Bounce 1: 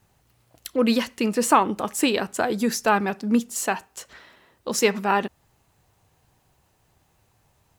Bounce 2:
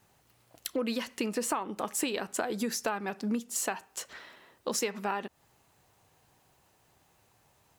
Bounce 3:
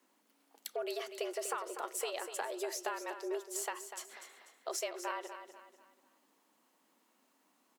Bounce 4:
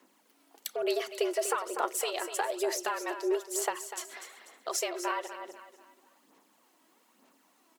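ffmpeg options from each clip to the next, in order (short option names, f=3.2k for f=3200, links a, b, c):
-af "lowshelf=f=120:g=-11.5,acompressor=threshold=-28dB:ratio=10"
-filter_complex "[0:a]afreqshift=160,asplit=2[a][b];[b]aecho=0:1:245|490|735|980:0.316|0.117|0.0433|0.016[c];[a][c]amix=inputs=2:normalize=0,volume=-7dB"
-af "aphaser=in_gain=1:out_gain=1:delay=3.1:decay=0.45:speed=1.1:type=sinusoidal,volume=5.5dB"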